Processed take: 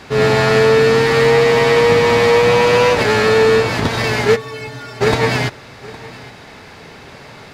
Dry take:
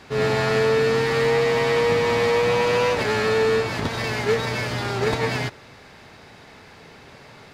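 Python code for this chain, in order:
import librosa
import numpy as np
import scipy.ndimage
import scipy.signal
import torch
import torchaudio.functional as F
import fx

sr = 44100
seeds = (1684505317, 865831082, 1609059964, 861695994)

y = fx.stiff_resonator(x, sr, f0_hz=130.0, decay_s=0.52, stiffness=0.03, at=(4.35, 5.0), fade=0.02)
y = y + 10.0 ** (-20.0 / 20.0) * np.pad(y, (int(813 * sr / 1000.0), 0))[:len(y)]
y = y * librosa.db_to_amplitude(8.0)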